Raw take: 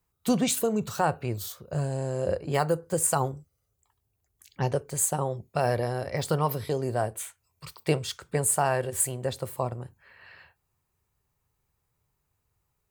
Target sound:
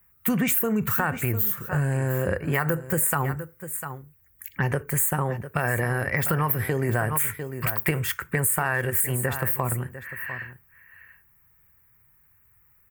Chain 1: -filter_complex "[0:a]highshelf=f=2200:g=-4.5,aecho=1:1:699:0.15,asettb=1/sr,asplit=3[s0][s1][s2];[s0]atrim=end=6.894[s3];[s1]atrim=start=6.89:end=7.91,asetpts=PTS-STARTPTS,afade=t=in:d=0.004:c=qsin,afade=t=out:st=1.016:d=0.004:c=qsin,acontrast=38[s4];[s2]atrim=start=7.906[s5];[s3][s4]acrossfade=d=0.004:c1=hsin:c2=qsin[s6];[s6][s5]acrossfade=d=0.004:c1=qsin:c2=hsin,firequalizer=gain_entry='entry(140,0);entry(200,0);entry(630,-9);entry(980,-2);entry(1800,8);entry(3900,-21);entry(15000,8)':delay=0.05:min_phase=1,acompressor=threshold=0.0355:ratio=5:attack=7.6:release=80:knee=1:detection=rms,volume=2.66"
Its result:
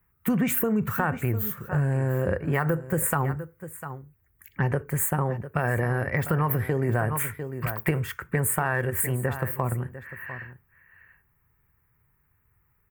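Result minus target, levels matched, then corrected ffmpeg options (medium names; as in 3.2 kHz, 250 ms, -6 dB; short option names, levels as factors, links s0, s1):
4 kHz band -5.0 dB
-filter_complex "[0:a]highshelf=f=2200:g=7,aecho=1:1:699:0.15,asettb=1/sr,asplit=3[s0][s1][s2];[s0]atrim=end=6.894[s3];[s1]atrim=start=6.89:end=7.91,asetpts=PTS-STARTPTS,afade=t=in:d=0.004:c=qsin,afade=t=out:st=1.016:d=0.004:c=qsin,acontrast=38[s4];[s2]atrim=start=7.906[s5];[s3][s4]acrossfade=d=0.004:c1=hsin:c2=qsin[s6];[s6][s5]acrossfade=d=0.004:c1=qsin:c2=hsin,firequalizer=gain_entry='entry(140,0);entry(200,0);entry(630,-9);entry(980,-2);entry(1800,8);entry(3900,-21);entry(15000,8)':delay=0.05:min_phase=1,acompressor=threshold=0.0355:ratio=5:attack=7.6:release=80:knee=1:detection=rms,volume=2.66"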